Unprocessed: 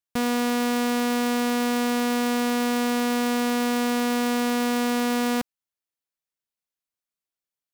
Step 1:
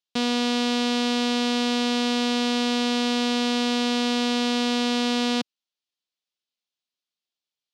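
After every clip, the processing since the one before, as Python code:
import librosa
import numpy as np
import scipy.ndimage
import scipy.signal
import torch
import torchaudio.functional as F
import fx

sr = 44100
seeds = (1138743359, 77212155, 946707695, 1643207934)

y = scipy.signal.sosfilt(scipy.signal.cheby1(2, 1.0, [190.0, 4300.0], 'bandpass', fs=sr, output='sos'), x)
y = fx.high_shelf_res(y, sr, hz=2500.0, db=7.0, q=1.5)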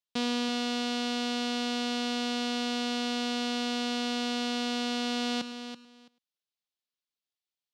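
y = x + 10.0 ** (-19.0 / 20.0) * np.pad(x, (int(104 * sr / 1000.0), 0))[:len(x)]
y = fx.rider(y, sr, range_db=10, speed_s=0.5)
y = fx.echo_feedback(y, sr, ms=332, feedback_pct=16, wet_db=-10.0)
y = y * librosa.db_to_amplitude(-7.0)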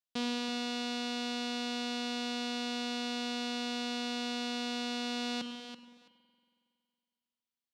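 y = fx.rev_spring(x, sr, rt60_s=2.3, pass_ms=(46,), chirp_ms=65, drr_db=8.5)
y = y * librosa.db_to_amplitude(-4.5)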